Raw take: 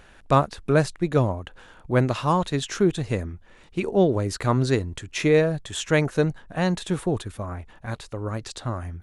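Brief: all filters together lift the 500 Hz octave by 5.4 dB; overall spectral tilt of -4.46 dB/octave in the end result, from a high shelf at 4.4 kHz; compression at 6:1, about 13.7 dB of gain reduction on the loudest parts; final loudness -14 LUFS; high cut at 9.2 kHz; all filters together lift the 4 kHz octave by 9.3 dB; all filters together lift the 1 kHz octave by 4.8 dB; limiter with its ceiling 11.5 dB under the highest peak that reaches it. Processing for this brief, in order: low-pass 9.2 kHz; peaking EQ 500 Hz +5.5 dB; peaking EQ 1 kHz +3.5 dB; peaking EQ 4 kHz +7.5 dB; treble shelf 4.4 kHz +7 dB; compression 6:1, threshold -25 dBFS; trim +21 dB; peak limiter -4 dBFS

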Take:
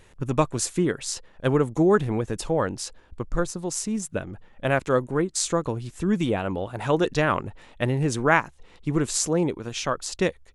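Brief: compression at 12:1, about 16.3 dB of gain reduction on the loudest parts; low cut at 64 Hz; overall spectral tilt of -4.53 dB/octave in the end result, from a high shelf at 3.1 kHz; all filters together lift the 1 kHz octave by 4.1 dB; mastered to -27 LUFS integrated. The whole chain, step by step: high-pass 64 Hz; peaking EQ 1 kHz +5.5 dB; treble shelf 3.1 kHz -3.5 dB; compression 12:1, threshold -30 dBFS; trim +8.5 dB

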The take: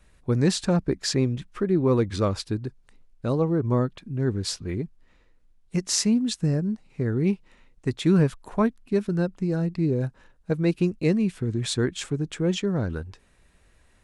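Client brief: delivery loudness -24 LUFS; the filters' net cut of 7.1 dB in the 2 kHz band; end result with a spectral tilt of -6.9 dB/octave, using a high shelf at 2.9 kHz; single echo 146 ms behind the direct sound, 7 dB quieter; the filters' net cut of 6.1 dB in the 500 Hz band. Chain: peaking EQ 500 Hz -8 dB; peaking EQ 2 kHz -7.5 dB; treble shelf 2.9 kHz -4 dB; delay 146 ms -7 dB; trim +3 dB

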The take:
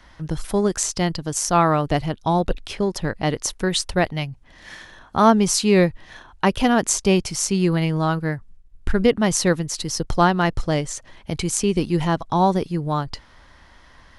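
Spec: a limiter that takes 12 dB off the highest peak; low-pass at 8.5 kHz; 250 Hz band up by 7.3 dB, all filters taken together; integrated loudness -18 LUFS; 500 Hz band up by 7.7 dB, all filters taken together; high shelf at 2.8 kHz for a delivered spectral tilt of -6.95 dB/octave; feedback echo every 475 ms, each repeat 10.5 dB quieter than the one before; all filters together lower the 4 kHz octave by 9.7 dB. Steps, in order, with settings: low-pass 8.5 kHz; peaking EQ 250 Hz +8.5 dB; peaking EQ 500 Hz +7.5 dB; treble shelf 2.8 kHz -7 dB; peaking EQ 4 kHz -7 dB; peak limiter -9 dBFS; feedback delay 475 ms, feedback 30%, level -10.5 dB; trim +2 dB

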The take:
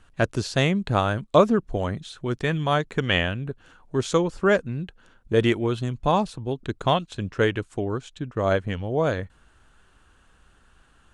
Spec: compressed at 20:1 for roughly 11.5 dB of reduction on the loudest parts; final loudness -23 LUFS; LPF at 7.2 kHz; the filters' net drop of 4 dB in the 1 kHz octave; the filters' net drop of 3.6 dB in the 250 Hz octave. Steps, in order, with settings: low-pass 7.2 kHz; peaking EQ 250 Hz -5 dB; peaking EQ 1 kHz -5 dB; compression 20:1, threshold -24 dBFS; trim +8.5 dB

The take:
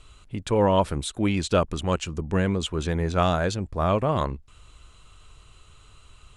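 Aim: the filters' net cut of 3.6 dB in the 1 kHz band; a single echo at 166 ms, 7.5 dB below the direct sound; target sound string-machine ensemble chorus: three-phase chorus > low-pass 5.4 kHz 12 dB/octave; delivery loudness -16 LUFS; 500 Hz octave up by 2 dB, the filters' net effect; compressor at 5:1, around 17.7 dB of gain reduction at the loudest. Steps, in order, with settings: peaking EQ 500 Hz +4 dB; peaking EQ 1 kHz -6 dB; compression 5:1, threshold -36 dBFS; delay 166 ms -7.5 dB; three-phase chorus; low-pass 5.4 kHz 12 dB/octave; trim +25.5 dB

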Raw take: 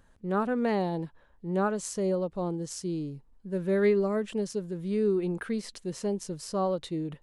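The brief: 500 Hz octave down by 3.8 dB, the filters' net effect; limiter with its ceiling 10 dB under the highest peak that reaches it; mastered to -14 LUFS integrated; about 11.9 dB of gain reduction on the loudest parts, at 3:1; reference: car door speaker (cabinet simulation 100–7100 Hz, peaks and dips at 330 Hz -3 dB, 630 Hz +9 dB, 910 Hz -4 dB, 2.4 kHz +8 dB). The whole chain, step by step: peaking EQ 500 Hz -7.5 dB; compression 3:1, threshold -41 dBFS; peak limiter -35 dBFS; cabinet simulation 100–7100 Hz, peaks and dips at 330 Hz -3 dB, 630 Hz +9 dB, 910 Hz -4 dB, 2.4 kHz +8 dB; trim +30 dB

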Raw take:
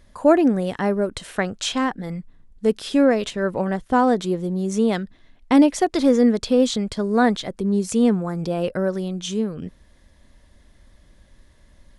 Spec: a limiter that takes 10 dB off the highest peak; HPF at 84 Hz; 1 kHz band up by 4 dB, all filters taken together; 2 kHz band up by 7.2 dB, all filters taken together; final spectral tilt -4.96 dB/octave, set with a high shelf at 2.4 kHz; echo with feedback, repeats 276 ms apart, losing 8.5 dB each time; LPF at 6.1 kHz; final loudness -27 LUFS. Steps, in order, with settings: high-pass 84 Hz; low-pass 6.1 kHz; peaking EQ 1 kHz +3.5 dB; peaking EQ 2 kHz +6 dB; treble shelf 2.4 kHz +4.5 dB; peak limiter -12.5 dBFS; feedback delay 276 ms, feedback 38%, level -8.5 dB; trim -4.5 dB

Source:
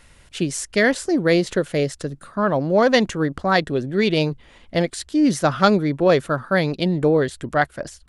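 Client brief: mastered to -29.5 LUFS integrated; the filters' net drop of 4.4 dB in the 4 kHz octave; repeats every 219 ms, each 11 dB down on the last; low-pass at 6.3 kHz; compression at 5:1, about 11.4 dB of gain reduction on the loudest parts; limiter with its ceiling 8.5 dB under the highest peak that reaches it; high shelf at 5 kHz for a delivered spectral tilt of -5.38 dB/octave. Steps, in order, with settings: low-pass 6.3 kHz; peaking EQ 4 kHz -8 dB; treble shelf 5 kHz +7 dB; compression 5:1, threshold -24 dBFS; peak limiter -22 dBFS; feedback delay 219 ms, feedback 28%, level -11 dB; trim +2 dB

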